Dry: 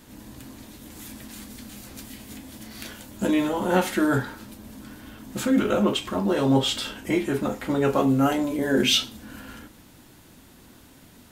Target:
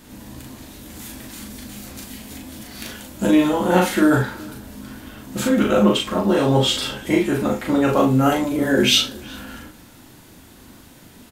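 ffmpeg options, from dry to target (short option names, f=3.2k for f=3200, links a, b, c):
-filter_complex "[0:a]asplit=2[a][b];[b]adelay=39,volume=-3dB[c];[a][c]amix=inputs=2:normalize=0,asplit=2[d][e];[e]adelay=373.2,volume=-22dB,highshelf=f=4k:g=-8.4[f];[d][f]amix=inputs=2:normalize=0,volume=3.5dB"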